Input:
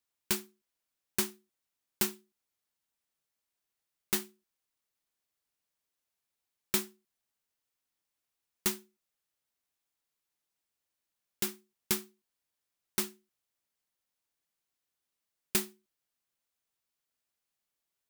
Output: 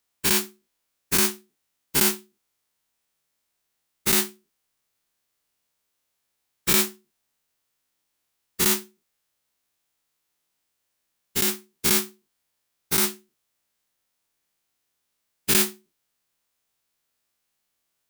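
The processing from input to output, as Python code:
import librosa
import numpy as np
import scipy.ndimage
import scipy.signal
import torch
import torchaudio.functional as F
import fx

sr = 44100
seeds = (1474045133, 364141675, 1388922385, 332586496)

y = fx.spec_dilate(x, sr, span_ms=120)
y = y * librosa.db_to_amplitude(4.5)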